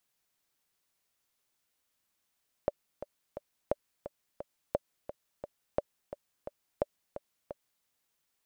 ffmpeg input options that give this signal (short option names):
-f lavfi -i "aevalsrc='pow(10,(-14-12*gte(mod(t,3*60/174),60/174))/20)*sin(2*PI*580*mod(t,60/174))*exp(-6.91*mod(t,60/174)/0.03)':d=5.17:s=44100"